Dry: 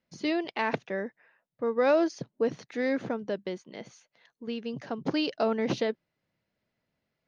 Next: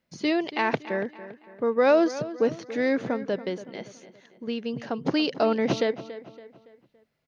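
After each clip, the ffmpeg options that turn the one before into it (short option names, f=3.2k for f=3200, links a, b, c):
-filter_complex "[0:a]asplit=2[a][b];[b]adelay=282,lowpass=f=4.6k:p=1,volume=-14.5dB,asplit=2[c][d];[d]adelay=282,lowpass=f=4.6k:p=1,volume=0.43,asplit=2[e][f];[f]adelay=282,lowpass=f=4.6k:p=1,volume=0.43,asplit=2[g][h];[h]adelay=282,lowpass=f=4.6k:p=1,volume=0.43[i];[a][c][e][g][i]amix=inputs=5:normalize=0,volume=4dB"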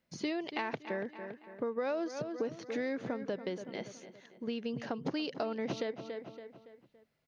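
-af "acompressor=threshold=-30dB:ratio=6,volume=-2.5dB"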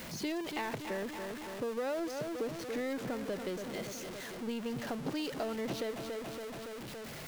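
-af "aeval=exprs='val(0)+0.5*0.0188*sgn(val(0))':c=same,volume=-4dB"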